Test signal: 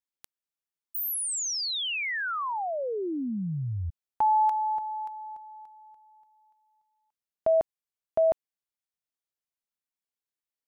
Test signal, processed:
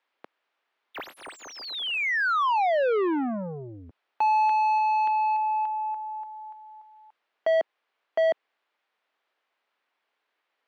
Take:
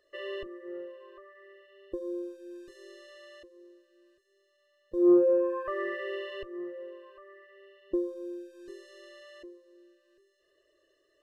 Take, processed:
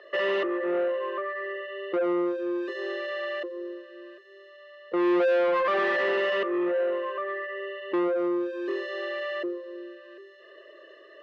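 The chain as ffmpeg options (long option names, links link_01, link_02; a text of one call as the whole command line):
ffmpeg -i in.wav -filter_complex "[0:a]asplit=2[link_01][link_02];[link_02]highpass=frequency=720:poles=1,volume=35dB,asoftclip=type=tanh:threshold=-13.5dB[link_03];[link_01][link_03]amix=inputs=2:normalize=0,lowpass=frequency=1800:poles=1,volume=-6dB,acrossover=split=250 3900:gain=0.0708 1 0.0631[link_04][link_05][link_06];[link_04][link_05][link_06]amix=inputs=3:normalize=0,volume=-2.5dB" out.wav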